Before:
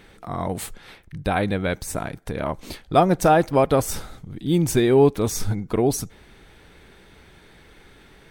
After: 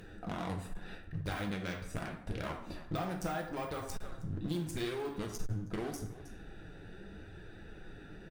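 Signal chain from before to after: Wiener smoothing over 41 samples; outdoor echo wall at 54 m, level -28 dB; in parallel at -7.5 dB: crossover distortion -35 dBFS; on the sum: de-esser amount 75%; limiter -13.5 dBFS, peak gain reduction 10 dB; EQ curve 550 Hz 0 dB, 1300 Hz +9 dB, 6300 Hz +15 dB; compressor 5:1, threshold -38 dBFS, peak gain reduction 20 dB; plate-style reverb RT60 0.7 s, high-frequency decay 0.65×, DRR 2 dB; one-sided clip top -34.5 dBFS; flange 0.81 Hz, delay 1.7 ms, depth 5.9 ms, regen -51%; gain +4 dB

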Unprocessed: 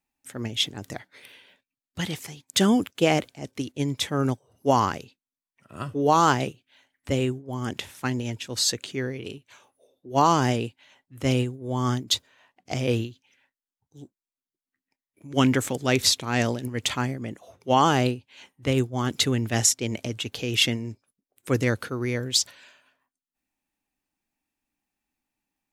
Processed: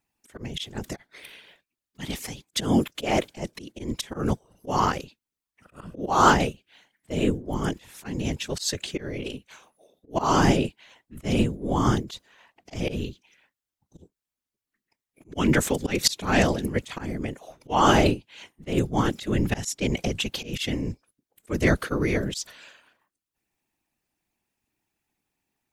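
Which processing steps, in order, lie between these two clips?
auto swell 0.209 s; whisperiser; gain +3.5 dB

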